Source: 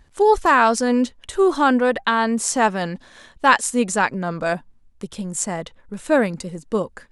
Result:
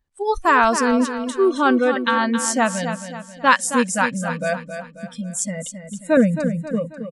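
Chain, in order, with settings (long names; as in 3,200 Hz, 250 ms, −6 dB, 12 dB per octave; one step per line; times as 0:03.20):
noise reduction from a noise print of the clip's start 22 dB
0:06.17–0:06.71: tilt shelving filter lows +9 dB, about 730 Hz
on a send: repeating echo 269 ms, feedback 43%, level −9 dB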